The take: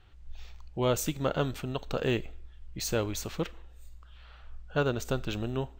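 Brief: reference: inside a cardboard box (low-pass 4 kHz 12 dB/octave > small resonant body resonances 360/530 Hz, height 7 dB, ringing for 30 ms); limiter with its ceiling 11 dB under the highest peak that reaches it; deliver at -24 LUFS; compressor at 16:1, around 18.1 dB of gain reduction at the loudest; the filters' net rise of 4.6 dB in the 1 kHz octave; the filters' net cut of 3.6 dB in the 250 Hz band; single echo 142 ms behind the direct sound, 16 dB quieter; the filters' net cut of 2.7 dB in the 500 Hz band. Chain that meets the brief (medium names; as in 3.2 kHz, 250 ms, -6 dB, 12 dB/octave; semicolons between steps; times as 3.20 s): peaking EQ 250 Hz -4 dB; peaking EQ 500 Hz -4 dB; peaking EQ 1 kHz +7.5 dB; compression 16:1, threshold -41 dBFS; peak limiter -39 dBFS; low-pass 4 kHz 12 dB/octave; delay 142 ms -16 dB; small resonant body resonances 360/530 Hz, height 7 dB, ringing for 30 ms; trim +26 dB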